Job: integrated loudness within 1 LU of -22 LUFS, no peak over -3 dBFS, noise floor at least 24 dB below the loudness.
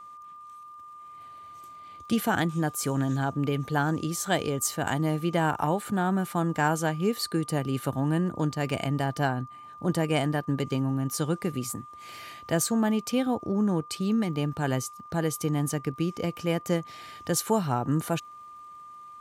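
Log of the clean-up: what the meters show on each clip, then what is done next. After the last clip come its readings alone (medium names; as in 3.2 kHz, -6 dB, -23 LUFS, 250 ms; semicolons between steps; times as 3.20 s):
tick rate 49 per s; steady tone 1.2 kHz; tone level -43 dBFS; loudness -28.0 LUFS; peak level -11.0 dBFS; loudness target -22.0 LUFS
-> de-click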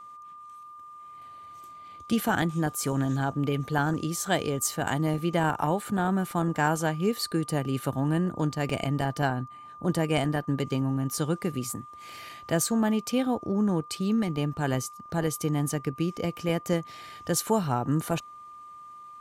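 tick rate 0.16 per s; steady tone 1.2 kHz; tone level -43 dBFS
-> band-stop 1.2 kHz, Q 30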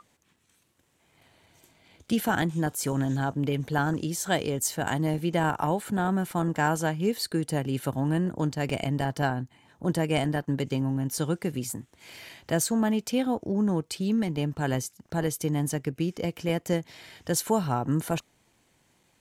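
steady tone not found; loudness -28.0 LUFS; peak level -11.5 dBFS; loudness target -22.0 LUFS
-> trim +6 dB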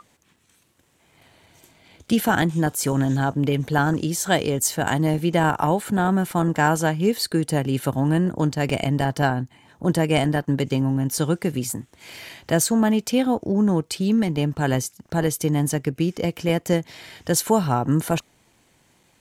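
loudness -22.0 LUFS; peak level -5.5 dBFS; noise floor -61 dBFS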